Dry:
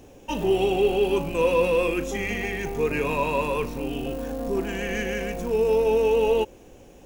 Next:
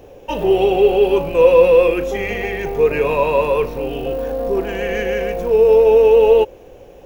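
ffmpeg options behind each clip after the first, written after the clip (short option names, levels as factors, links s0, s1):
-af "equalizer=f=250:t=o:w=1:g=-7,equalizer=f=500:t=o:w=1:g=8,equalizer=f=8000:t=o:w=1:g=-11,volume=1.78"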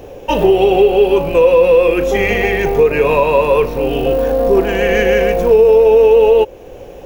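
-af "alimiter=limit=0.316:level=0:latency=1:release=381,volume=2.51"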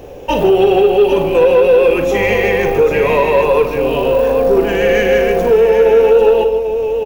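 -filter_complex "[0:a]asplit=2[s0][s1];[s1]aecho=0:1:49|153|794:0.316|0.251|0.376[s2];[s0][s2]amix=inputs=2:normalize=0,asoftclip=type=tanh:threshold=0.891"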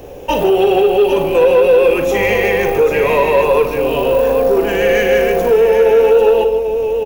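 -filter_complex "[0:a]acrossover=split=340|7500[s0][s1][s2];[s0]alimiter=limit=0.119:level=0:latency=1[s3];[s2]acontrast=30[s4];[s3][s1][s4]amix=inputs=3:normalize=0"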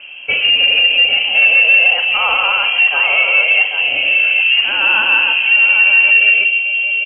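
-af "equalizer=f=82:t=o:w=0.89:g=-11.5,lowpass=f=2700:t=q:w=0.5098,lowpass=f=2700:t=q:w=0.6013,lowpass=f=2700:t=q:w=0.9,lowpass=f=2700:t=q:w=2.563,afreqshift=-3200"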